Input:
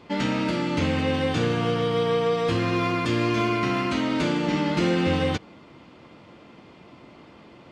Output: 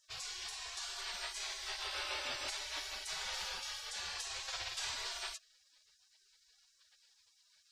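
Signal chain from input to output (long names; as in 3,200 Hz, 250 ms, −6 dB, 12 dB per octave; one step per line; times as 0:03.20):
gate on every frequency bin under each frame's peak −30 dB weak
level +3.5 dB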